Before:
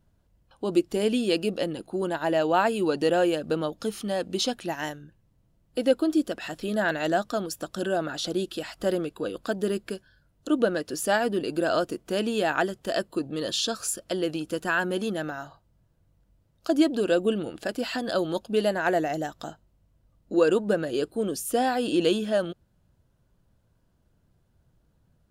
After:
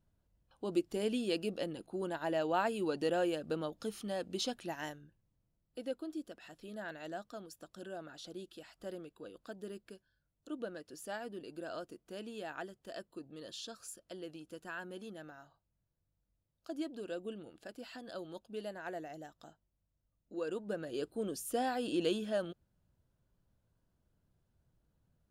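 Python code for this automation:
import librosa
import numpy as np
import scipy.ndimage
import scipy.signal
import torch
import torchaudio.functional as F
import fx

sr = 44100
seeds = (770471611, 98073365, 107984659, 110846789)

y = fx.gain(x, sr, db=fx.line((4.91, -10.0), (6.01, -18.5), (20.39, -18.5), (21.09, -10.0)))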